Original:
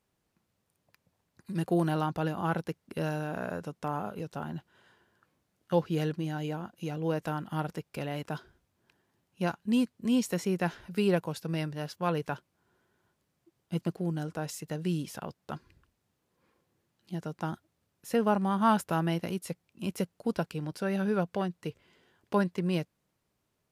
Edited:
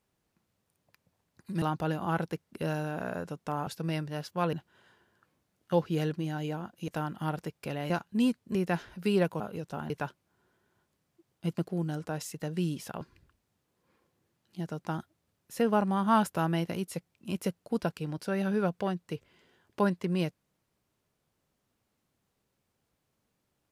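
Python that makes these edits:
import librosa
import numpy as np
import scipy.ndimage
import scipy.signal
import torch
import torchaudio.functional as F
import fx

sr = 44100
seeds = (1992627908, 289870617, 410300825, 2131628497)

y = fx.edit(x, sr, fx.cut(start_s=1.62, length_s=0.36),
    fx.swap(start_s=4.03, length_s=0.5, other_s=11.32, other_length_s=0.86),
    fx.cut(start_s=6.88, length_s=0.31),
    fx.cut(start_s=8.21, length_s=1.22),
    fx.cut(start_s=10.08, length_s=0.39),
    fx.cut(start_s=15.29, length_s=0.26), tone=tone)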